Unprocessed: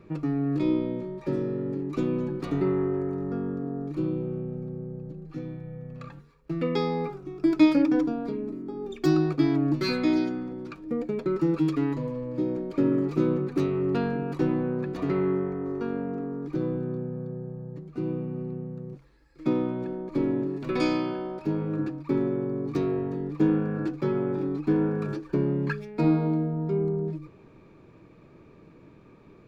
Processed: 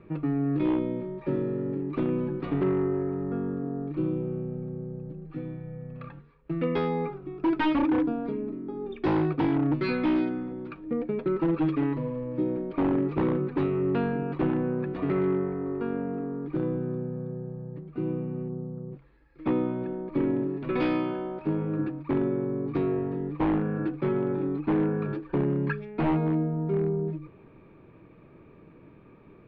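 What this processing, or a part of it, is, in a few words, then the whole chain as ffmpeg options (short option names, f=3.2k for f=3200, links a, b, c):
synthesiser wavefolder: -filter_complex "[0:a]aeval=exprs='0.119*(abs(mod(val(0)/0.119+3,4)-2)-1)':c=same,lowpass=f=3.2k:w=0.5412,lowpass=f=3.2k:w=1.3066,asplit=3[a][b][c];[a]afade=t=out:st=18.48:d=0.02[d];[b]lowpass=f=1.3k:w=0.5412,lowpass=f=1.3k:w=1.3066,afade=t=in:st=18.48:d=0.02,afade=t=out:st=18.9:d=0.02[e];[c]afade=t=in:st=18.9:d=0.02[f];[d][e][f]amix=inputs=3:normalize=0"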